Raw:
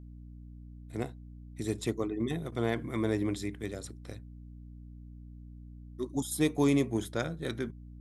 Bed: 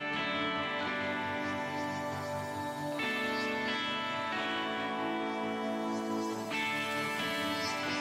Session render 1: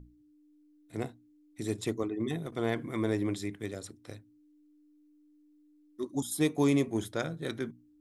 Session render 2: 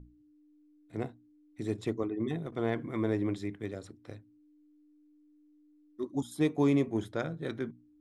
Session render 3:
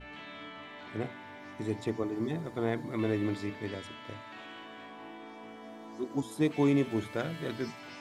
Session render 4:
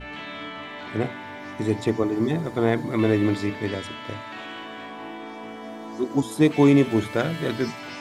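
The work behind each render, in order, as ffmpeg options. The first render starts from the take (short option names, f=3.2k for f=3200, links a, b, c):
-af "bandreject=f=60:t=h:w=6,bandreject=f=120:t=h:w=6,bandreject=f=180:t=h:w=6,bandreject=f=240:t=h:w=6"
-af "aemphasis=mode=reproduction:type=75kf"
-filter_complex "[1:a]volume=-12.5dB[a];[0:a][a]amix=inputs=2:normalize=0"
-af "volume=10dB"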